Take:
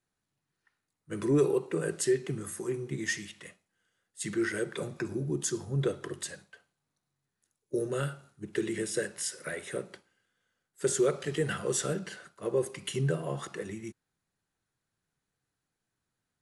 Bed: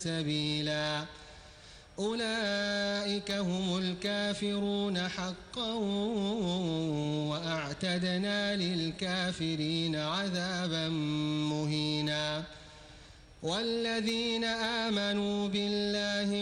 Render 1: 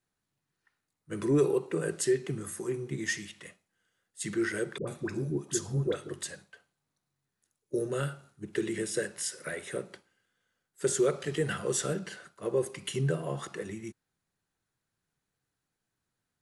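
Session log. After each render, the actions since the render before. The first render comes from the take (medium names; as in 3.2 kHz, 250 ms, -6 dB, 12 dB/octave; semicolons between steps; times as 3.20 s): 4.78–6.09 s: phase dispersion highs, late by 94 ms, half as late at 700 Hz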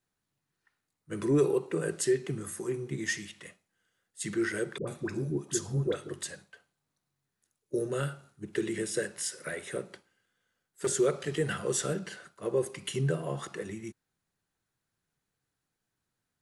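9.15–10.87 s: hard clipper -24.5 dBFS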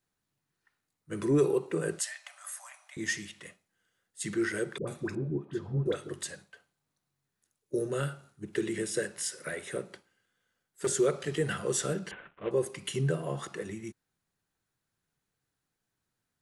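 1.99–2.97 s: brick-wall FIR high-pass 570 Hz; 5.15–5.86 s: distance through air 480 m; 12.11–12.51 s: CVSD coder 16 kbps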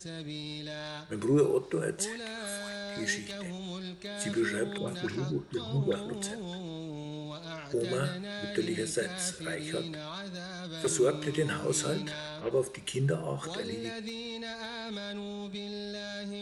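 add bed -7.5 dB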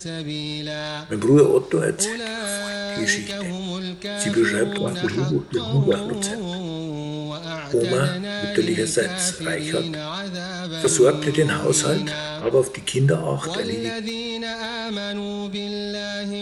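trim +11 dB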